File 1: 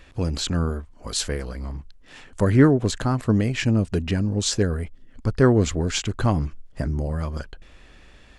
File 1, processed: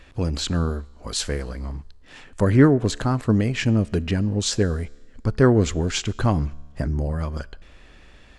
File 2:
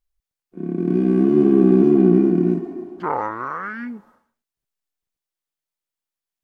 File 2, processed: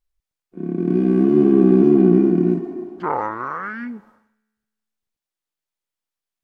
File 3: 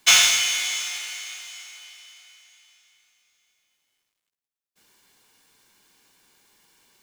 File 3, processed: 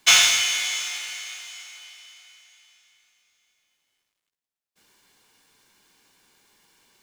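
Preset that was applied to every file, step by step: high shelf 9000 Hz -4.5 dB; resonator 72 Hz, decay 1.3 s, harmonics all, mix 30%; gain +3.5 dB

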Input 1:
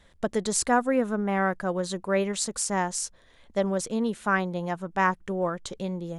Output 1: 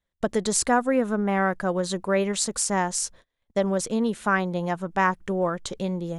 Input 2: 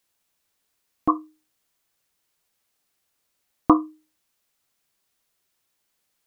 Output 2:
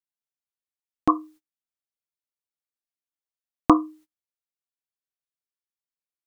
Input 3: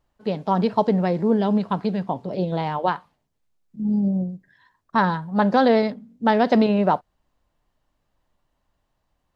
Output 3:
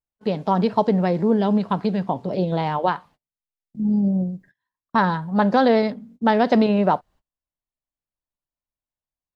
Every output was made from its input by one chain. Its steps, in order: gate -49 dBFS, range -29 dB; in parallel at -1.5 dB: compressor, threshold -25 dBFS; on the sum: gain -1.5 dB

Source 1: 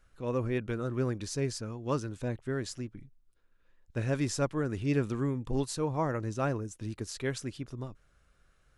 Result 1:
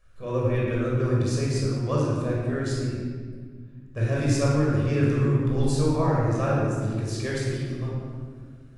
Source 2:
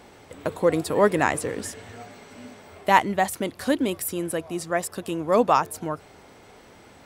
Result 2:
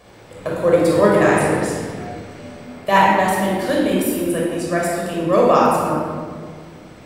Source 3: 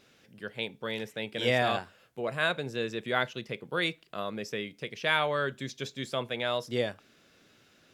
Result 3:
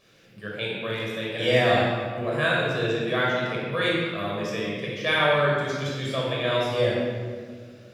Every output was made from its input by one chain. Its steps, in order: shoebox room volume 2500 m³, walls mixed, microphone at 5.8 m; gain -2.5 dB

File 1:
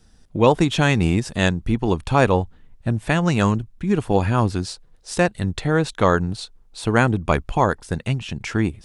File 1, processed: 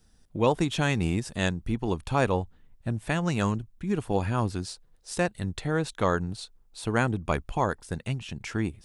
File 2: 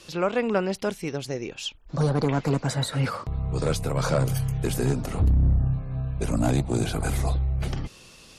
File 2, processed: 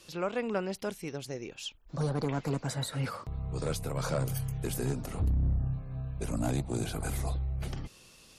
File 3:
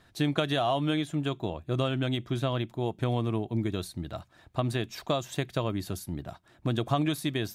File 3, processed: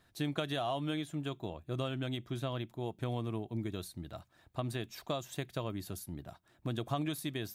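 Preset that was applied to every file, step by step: high shelf 12000 Hz +11.5 dB; gain -8 dB

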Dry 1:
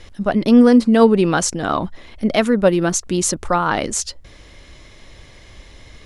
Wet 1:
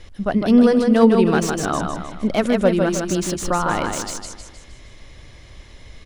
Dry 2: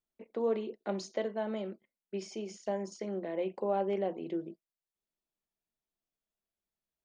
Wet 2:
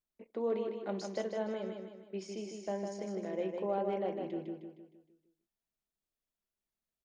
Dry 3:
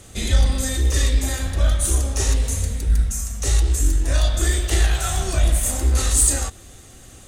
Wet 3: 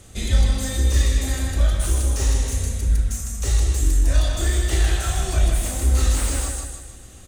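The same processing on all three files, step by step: low shelf 140 Hz +4 dB; on a send: feedback echo 0.155 s, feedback 45%, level -5 dB; on the sum: slew limiter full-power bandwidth 450 Hz; gain -3.5 dB

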